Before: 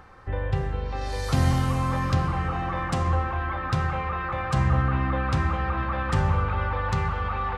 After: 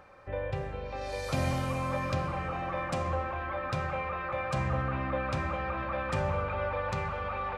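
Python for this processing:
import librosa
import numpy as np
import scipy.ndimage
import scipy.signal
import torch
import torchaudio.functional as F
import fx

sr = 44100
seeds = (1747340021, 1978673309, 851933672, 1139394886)

y = fx.low_shelf(x, sr, hz=85.0, db=-10.0)
y = fx.small_body(y, sr, hz=(580.0, 2400.0), ring_ms=60, db=15)
y = y * librosa.db_to_amplitude(-6.0)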